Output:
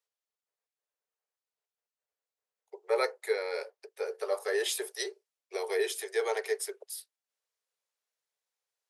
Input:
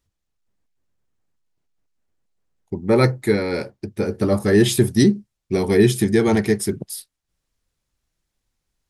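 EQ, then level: steep high-pass 410 Hz 96 dB/oct; -9.0 dB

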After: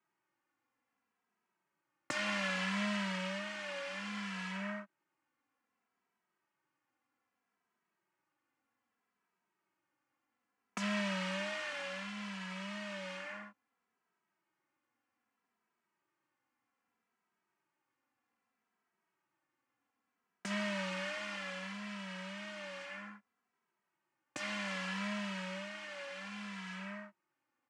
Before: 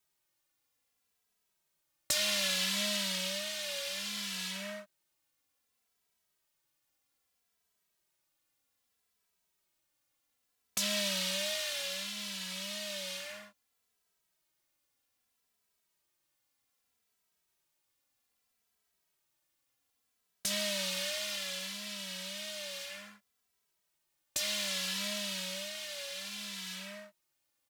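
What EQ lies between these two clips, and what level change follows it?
speaker cabinet 100–8100 Hz, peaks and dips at 160 Hz -5 dB, 440 Hz -8 dB, 620 Hz -10 dB, 3700 Hz -6 dB; three-band isolator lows -17 dB, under 150 Hz, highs -19 dB, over 2600 Hz; bell 3700 Hz -7.5 dB 2.5 oct; +9.0 dB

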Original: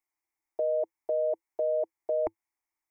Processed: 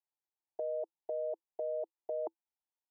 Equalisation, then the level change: Butterworth band-pass 580 Hz, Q 1; dynamic EQ 570 Hz, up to -5 dB, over -44 dBFS, Q 4.9; -6.0 dB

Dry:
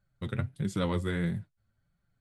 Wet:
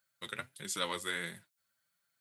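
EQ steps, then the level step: HPF 550 Hz 6 dB/oct; tilt +3.5 dB/oct; notch 750 Hz, Q 12; 0.0 dB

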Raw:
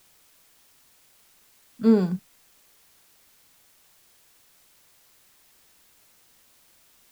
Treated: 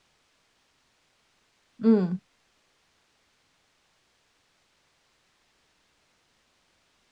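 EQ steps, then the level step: air absorption 110 m; -2.0 dB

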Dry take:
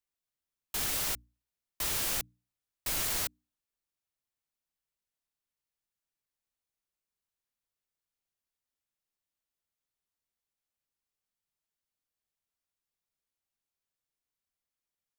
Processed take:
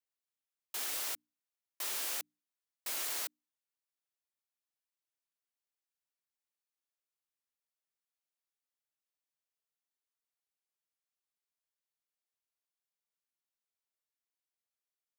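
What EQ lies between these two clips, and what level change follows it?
Bessel high-pass 420 Hz, order 4; -5.0 dB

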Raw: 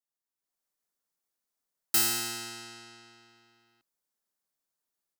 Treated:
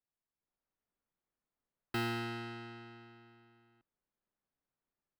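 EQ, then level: air absorption 450 m; low shelf 210 Hz +8.5 dB; +1.0 dB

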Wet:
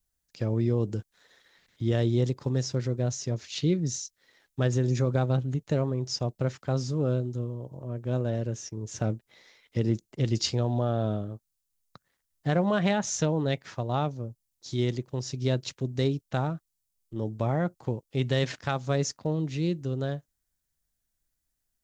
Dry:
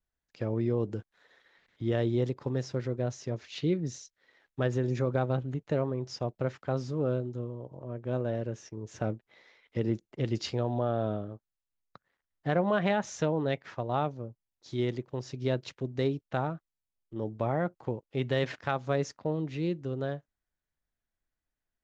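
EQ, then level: tone controls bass +6 dB, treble +14 dB; 0.0 dB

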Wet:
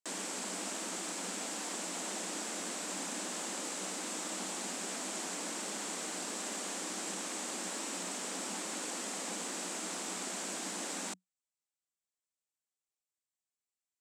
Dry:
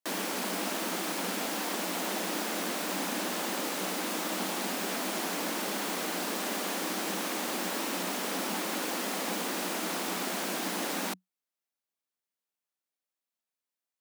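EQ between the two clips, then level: synth low-pass 7800 Hz, resonance Q 4.2; -8.5 dB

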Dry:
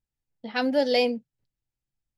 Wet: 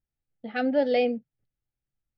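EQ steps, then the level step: Gaussian blur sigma 2.5 samples; Butterworth band-stop 1000 Hz, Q 4.1; air absorption 56 m; 0.0 dB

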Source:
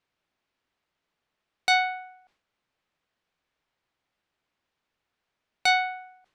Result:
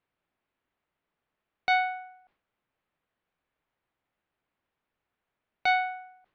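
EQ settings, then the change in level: air absorption 320 m; 0.0 dB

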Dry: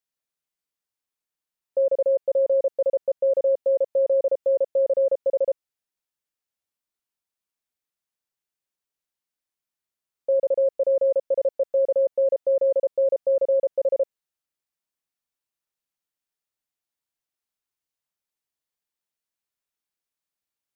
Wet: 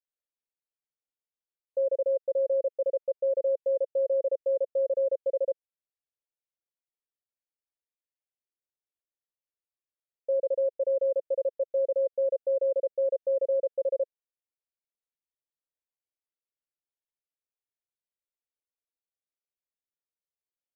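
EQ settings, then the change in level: air absorption 470 m; bell 510 Hz +4 dB 0.52 oct; fixed phaser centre 480 Hz, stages 4; -7.5 dB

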